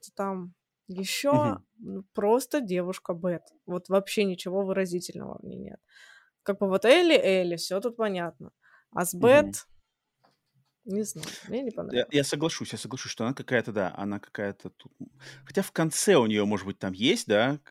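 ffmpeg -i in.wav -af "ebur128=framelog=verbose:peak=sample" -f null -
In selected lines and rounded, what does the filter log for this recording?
Integrated loudness:
  I:         -26.9 LUFS
  Threshold: -37.9 LUFS
Loudness range:
  LRA:         6.2 LU
  Threshold: -48.2 LUFS
  LRA low:   -31.7 LUFS
  LRA high:  -25.5 LUFS
Sample peak:
  Peak:       -4.4 dBFS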